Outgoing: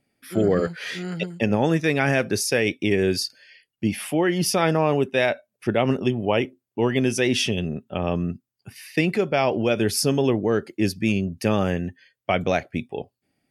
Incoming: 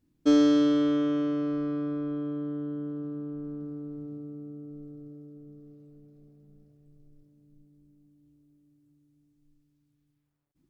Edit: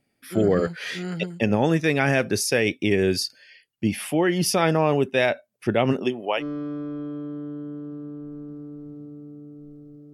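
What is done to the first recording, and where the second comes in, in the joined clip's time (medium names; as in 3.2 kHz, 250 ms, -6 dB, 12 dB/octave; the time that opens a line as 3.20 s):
outgoing
5.92–6.43 s: high-pass 150 Hz -> 850 Hz
6.40 s: go over to incoming from 1.52 s, crossfade 0.06 s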